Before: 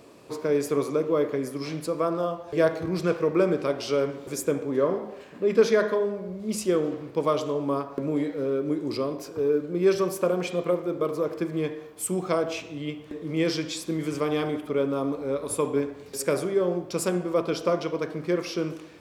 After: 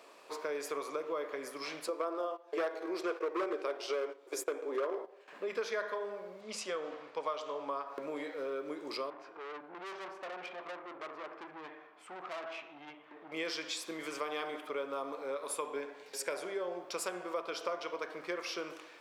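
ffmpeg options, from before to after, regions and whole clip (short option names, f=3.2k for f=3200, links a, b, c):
-filter_complex "[0:a]asettb=1/sr,asplit=3[a][b][c];[a]atrim=end=1.884[d];[b]atrim=start=1.88:end=5.28,asetpts=PTS-STARTPTS,afade=t=in:d=0.004:c=qsin,afade=t=out:st=3.396:d=0.004:c=qsin,agate=range=-14dB:threshold=-35dB:ratio=16:release=100:detection=peak,highpass=f=360:t=q:w=3.4,asoftclip=type=hard:threshold=-11.5dB[e];[c]atrim=start=5.276[f];[d][e]acrossfade=d=0.004:c1=hsin:c2=qsin[g];[g][f]acrossfade=d=0.004:c1=qsin:c2=hsin,asettb=1/sr,asplit=3[h][i][j];[h]atrim=end=6.414[k];[i]atrim=start=6.41:end=7.87,asetpts=PTS-STARTPTS,afade=t=in:d=0.004:c=qsin,afade=t=out:st=1.456:d=0.004:c=qsin,highpass=110,lowpass=6.7k,equalizer=f=350:w=6.9:g=-12[l];[j]atrim=start=7.866[m];[k][l]acrossfade=d=0.004:c1=hsin:c2=qsin[n];[n][m]acrossfade=d=0.004:c1=qsin:c2=hsin,asettb=1/sr,asplit=3[o][p][q];[o]atrim=end=9.104[r];[p]atrim=start=9.1:end=13.32,asetpts=PTS-STARTPTS,afade=t=in:d=0.004:c=qsin,afade=t=out:st=4.216:d=0.004:c=qsin,lowpass=2.1k,equalizer=f=480:w=7:g=-12.5,aeval=exprs='(tanh(56.2*val(0)+0.35)-tanh(0.35))/56.2':c=same[s];[q]atrim=start=13.316[t];[r][s]acrossfade=d=0.004:c1=hsin:c2=qsin[u];[u][t]acrossfade=d=0.004:c1=qsin:c2=hsin,asettb=1/sr,asplit=3[v][w][x];[v]atrim=end=15.744[y];[w]atrim=start=15.74:end=16.8,asetpts=PTS-STARTPTS,afade=t=in:d=0.004:c=qsin,afade=t=out:st=1.056:d=0.004:c=qsin,highshelf=f=12k:g=-5.5,bandreject=f=1.2k:w=6.7[z];[x]atrim=start=16.796[aa];[y][z]acrossfade=d=0.004:c1=hsin:c2=qsin[ab];[ab][aa]acrossfade=d=0.004:c1=qsin:c2=hsin,highpass=770,highshelf=f=4.8k:g=-8,acompressor=threshold=-36dB:ratio=3,volume=1dB"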